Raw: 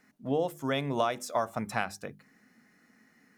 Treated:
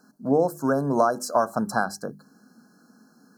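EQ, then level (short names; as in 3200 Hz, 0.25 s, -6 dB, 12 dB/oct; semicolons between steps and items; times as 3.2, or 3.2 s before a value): brick-wall FIR band-stop 1700–4000 Hz; resonant low shelf 130 Hz -8 dB, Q 1.5; +7.5 dB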